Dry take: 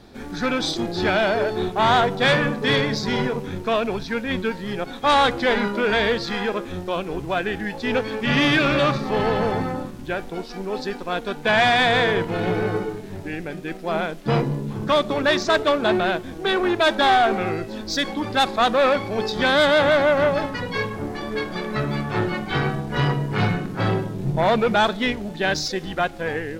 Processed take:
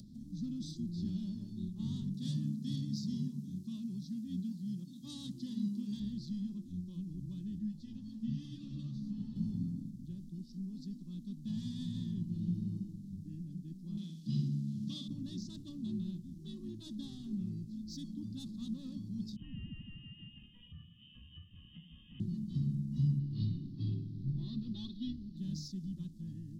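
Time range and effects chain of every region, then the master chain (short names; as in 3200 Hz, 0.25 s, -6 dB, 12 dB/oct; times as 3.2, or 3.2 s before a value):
2.14–6 HPF 130 Hz + high shelf 3400 Hz +6.5 dB
7.59–9.36 bell 1600 Hz +6 dB 2.6 oct + compressor 2.5:1, threshold -18 dBFS + ensemble effect
13.97–15.08 weighting filter D + flutter echo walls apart 10.6 m, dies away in 0.53 s
19.36–22.2 HPF 480 Hz + inverted band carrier 3400 Hz
23.19–25.37 resonant high shelf 5700 Hz -11 dB, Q 3 + comb 2.7 ms, depth 73%
whole clip: inverse Chebyshev band-stop 430–2400 Hz, stop band 50 dB; three-band isolator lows -17 dB, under 170 Hz, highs -22 dB, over 2500 Hz; upward compressor, threshold -45 dBFS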